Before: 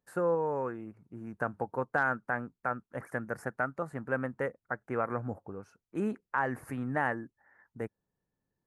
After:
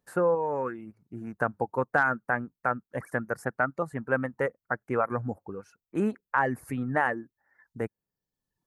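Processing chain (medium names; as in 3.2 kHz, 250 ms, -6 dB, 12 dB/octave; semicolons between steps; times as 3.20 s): reverb removal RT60 0.89 s; trim +5.5 dB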